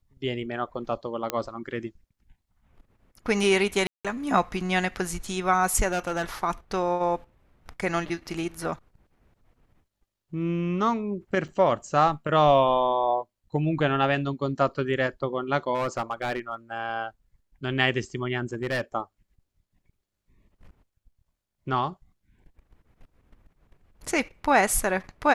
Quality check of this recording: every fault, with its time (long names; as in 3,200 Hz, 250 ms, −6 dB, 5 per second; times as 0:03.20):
0:01.30: click −11 dBFS
0:03.87–0:04.05: drop-out 176 ms
0:05.92–0:06.22: clipping −22.5 dBFS
0:11.48: drop-out 5 ms
0:15.74–0:16.55: clipping −22.5 dBFS
0:18.53–0:18.81: clipping −23 dBFS